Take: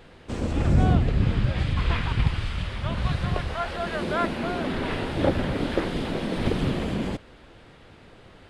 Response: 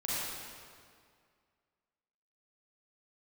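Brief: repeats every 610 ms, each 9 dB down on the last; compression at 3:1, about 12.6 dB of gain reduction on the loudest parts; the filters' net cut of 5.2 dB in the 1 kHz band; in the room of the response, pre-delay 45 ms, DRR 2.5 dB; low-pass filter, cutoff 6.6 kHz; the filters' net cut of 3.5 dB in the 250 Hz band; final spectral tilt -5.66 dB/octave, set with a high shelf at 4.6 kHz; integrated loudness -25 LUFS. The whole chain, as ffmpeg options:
-filter_complex "[0:a]lowpass=6600,equalizer=f=250:t=o:g=-4.5,equalizer=f=1000:t=o:g=-7,highshelf=f=4600:g=-6.5,acompressor=threshold=0.02:ratio=3,aecho=1:1:610|1220|1830|2440:0.355|0.124|0.0435|0.0152,asplit=2[s0][s1];[1:a]atrim=start_sample=2205,adelay=45[s2];[s1][s2]afir=irnorm=-1:irlink=0,volume=0.376[s3];[s0][s3]amix=inputs=2:normalize=0,volume=3.16"

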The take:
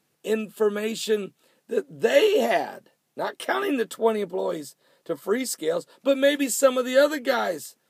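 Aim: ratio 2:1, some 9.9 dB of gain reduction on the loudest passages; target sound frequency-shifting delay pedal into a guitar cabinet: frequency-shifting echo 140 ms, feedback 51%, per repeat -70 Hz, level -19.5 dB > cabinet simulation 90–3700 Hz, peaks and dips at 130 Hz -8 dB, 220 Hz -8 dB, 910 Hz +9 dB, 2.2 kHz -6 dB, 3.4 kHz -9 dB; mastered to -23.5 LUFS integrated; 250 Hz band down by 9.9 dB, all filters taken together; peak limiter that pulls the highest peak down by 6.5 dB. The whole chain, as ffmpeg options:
-filter_complex "[0:a]equalizer=f=250:t=o:g=-9,acompressor=threshold=0.0224:ratio=2,alimiter=limit=0.0668:level=0:latency=1,asplit=5[s0][s1][s2][s3][s4];[s1]adelay=140,afreqshift=-70,volume=0.106[s5];[s2]adelay=280,afreqshift=-140,volume=0.0543[s6];[s3]adelay=420,afreqshift=-210,volume=0.0275[s7];[s4]adelay=560,afreqshift=-280,volume=0.0141[s8];[s0][s5][s6][s7][s8]amix=inputs=5:normalize=0,highpass=90,equalizer=f=130:t=q:w=4:g=-8,equalizer=f=220:t=q:w=4:g=-8,equalizer=f=910:t=q:w=4:g=9,equalizer=f=2200:t=q:w=4:g=-6,equalizer=f=3400:t=q:w=4:g=-9,lowpass=f=3700:w=0.5412,lowpass=f=3700:w=1.3066,volume=3.76"

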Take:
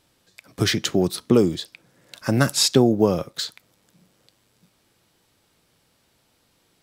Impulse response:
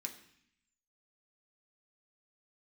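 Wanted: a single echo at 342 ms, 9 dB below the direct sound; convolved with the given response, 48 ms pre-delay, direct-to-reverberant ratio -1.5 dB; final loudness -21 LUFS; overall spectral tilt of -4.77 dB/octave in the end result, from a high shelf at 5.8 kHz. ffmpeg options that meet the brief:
-filter_complex "[0:a]highshelf=f=5800:g=-4,aecho=1:1:342:0.355,asplit=2[s0][s1];[1:a]atrim=start_sample=2205,adelay=48[s2];[s1][s2]afir=irnorm=-1:irlink=0,volume=1.58[s3];[s0][s3]amix=inputs=2:normalize=0,volume=0.631"

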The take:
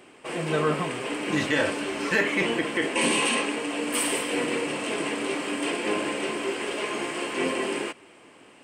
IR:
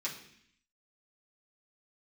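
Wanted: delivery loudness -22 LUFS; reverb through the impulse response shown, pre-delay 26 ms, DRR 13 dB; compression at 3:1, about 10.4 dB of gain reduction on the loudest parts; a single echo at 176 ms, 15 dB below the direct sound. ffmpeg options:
-filter_complex "[0:a]acompressor=threshold=0.02:ratio=3,aecho=1:1:176:0.178,asplit=2[s0][s1];[1:a]atrim=start_sample=2205,adelay=26[s2];[s1][s2]afir=irnorm=-1:irlink=0,volume=0.168[s3];[s0][s3]amix=inputs=2:normalize=0,volume=3.98"

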